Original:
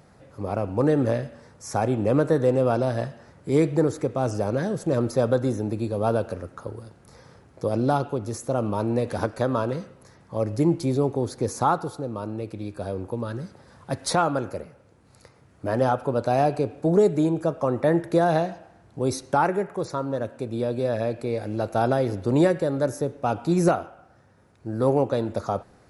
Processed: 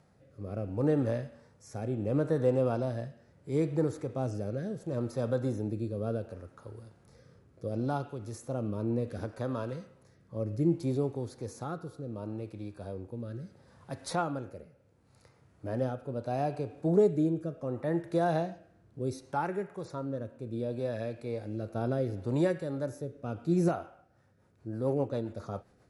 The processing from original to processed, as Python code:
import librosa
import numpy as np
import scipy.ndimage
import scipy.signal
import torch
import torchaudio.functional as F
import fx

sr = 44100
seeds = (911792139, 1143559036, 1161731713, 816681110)

y = fx.hpss(x, sr, part='percussive', gain_db=-7)
y = fx.rotary_switch(y, sr, hz=0.7, then_hz=7.5, switch_at_s=23.76)
y = F.gain(torch.from_numpy(y), -5.0).numpy()